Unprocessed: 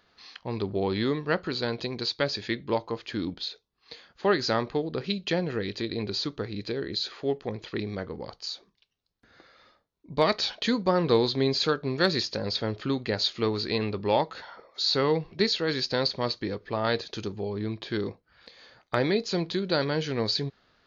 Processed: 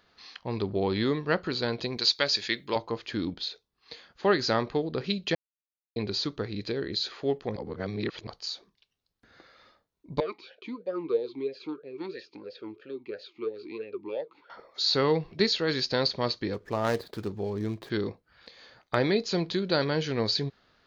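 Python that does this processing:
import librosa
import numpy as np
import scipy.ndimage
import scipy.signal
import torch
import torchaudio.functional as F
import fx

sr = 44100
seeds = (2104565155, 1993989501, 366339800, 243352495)

y = fx.tilt_eq(x, sr, slope=3.0, at=(1.97, 2.76))
y = fx.vowel_sweep(y, sr, vowels='e-u', hz=3.0, at=(10.2, 14.5))
y = fx.median_filter(y, sr, points=15, at=(16.53, 17.89), fade=0.02)
y = fx.edit(y, sr, fx.silence(start_s=5.35, length_s=0.61),
    fx.reverse_span(start_s=7.56, length_s=0.71), tone=tone)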